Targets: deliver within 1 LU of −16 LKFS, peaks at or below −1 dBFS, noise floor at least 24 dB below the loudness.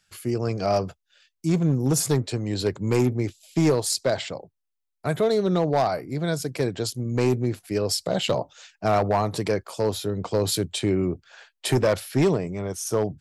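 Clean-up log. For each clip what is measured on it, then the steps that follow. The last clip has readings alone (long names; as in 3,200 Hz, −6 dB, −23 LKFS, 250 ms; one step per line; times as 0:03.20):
share of clipped samples 1.1%; peaks flattened at −14.5 dBFS; integrated loudness −25.0 LKFS; sample peak −14.5 dBFS; target loudness −16.0 LKFS
→ clipped peaks rebuilt −14.5 dBFS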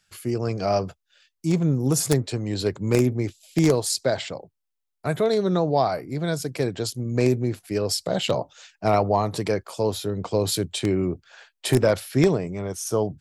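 share of clipped samples 0.0%; integrated loudness −24.0 LKFS; sample peak −5.5 dBFS; target loudness −16.0 LKFS
→ level +8 dB
brickwall limiter −1 dBFS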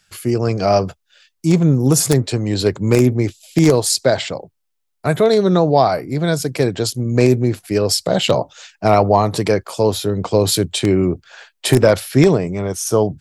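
integrated loudness −16.5 LKFS; sample peak −1.0 dBFS; background noise floor −71 dBFS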